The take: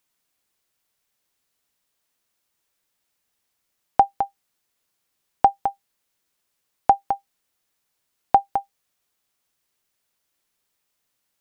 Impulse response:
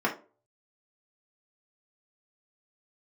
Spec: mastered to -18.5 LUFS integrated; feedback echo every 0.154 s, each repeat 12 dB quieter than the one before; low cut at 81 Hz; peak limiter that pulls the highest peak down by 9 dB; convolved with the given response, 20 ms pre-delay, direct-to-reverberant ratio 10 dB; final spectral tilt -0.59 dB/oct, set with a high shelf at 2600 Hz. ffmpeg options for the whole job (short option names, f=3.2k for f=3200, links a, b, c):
-filter_complex "[0:a]highpass=81,highshelf=f=2.6k:g=-6.5,alimiter=limit=-11.5dB:level=0:latency=1,aecho=1:1:154|308|462:0.251|0.0628|0.0157,asplit=2[a][b];[1:a]atrim=start_sample=2205,adelay=20[c];[b][c]afir=irnorm=-1:irlink=0,volume=-21.5dB[d];[a][d]amix=inputs=2:normalize=0,volume=10dB"